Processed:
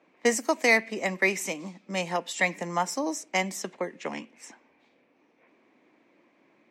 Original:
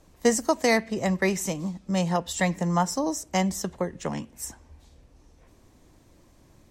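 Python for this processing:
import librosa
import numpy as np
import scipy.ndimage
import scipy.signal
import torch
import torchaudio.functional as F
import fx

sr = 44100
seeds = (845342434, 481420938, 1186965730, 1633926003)

y = fx.env_lowpass(x, sr, base_hz=2400.0, full_db=-23.0)
y = scipy.signal.sosfilt(scipy.signal.butter(4, 230.0, 'highpass', fs=sr, output='sos'), y)
y = fx.peak_eq(y, sr, hz=2300.0, db=11.5, octaves=0.53)
y = F.gain(torch.from_numpy(y), -2.5).numpy()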